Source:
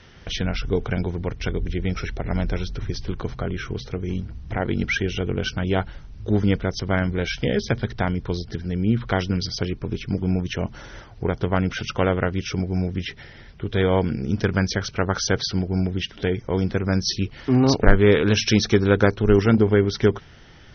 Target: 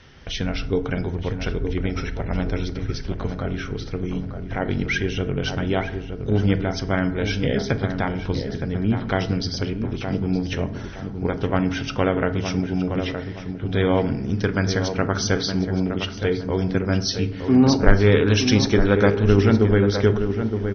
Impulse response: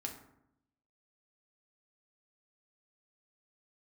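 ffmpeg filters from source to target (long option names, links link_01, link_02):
-filter_complex "[0:a]asplit=2[link_01][link_02];[link_02]adelay=917,lowpass=frequency=1600:poles=1,volume=-7dB,asplit=2[link_03][link_04];[link_04]adelay=917,lowpass=frequency=1600:poles=1,volume=0.36,asplit=2[link_05][link_06];[link_06]adelay=917,lowpass=frequency=1600:poles=1,volume=0.36,asplit=2[link_07][link_08];[link_08]adelay=917,lowpass=frequency=1600:poles=1,volume=0.36[link_09];[link_01][link_03][link_05][link_07][link_09]amix=inputs=5:normalize=0,asplit=2[link_10][link_11];[1:a]atrim=start_sample=2205[link_12];[link_11][link_12]afir=irnorm=-1:irlink=0,volume=0dB[link_13];[link_10][link_13]amix=inputs=2:normalize=0,volume=-5dB"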